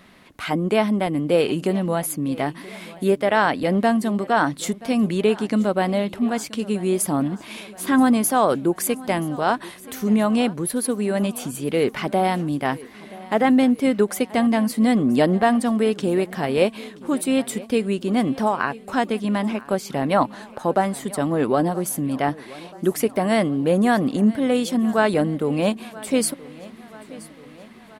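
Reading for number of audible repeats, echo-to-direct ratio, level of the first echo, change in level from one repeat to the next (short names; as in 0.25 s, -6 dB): 4, -18.5 dB, -20.0 dB, -5.0 dB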